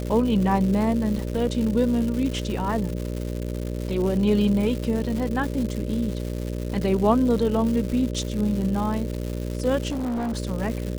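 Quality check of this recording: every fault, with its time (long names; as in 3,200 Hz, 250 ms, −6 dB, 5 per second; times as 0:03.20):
mains buzz 60 Hz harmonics 10 −29 dBFS
surface crackle 300 per second −29 dBFS
0:09.90–0:10.38: clipping −24 dBFS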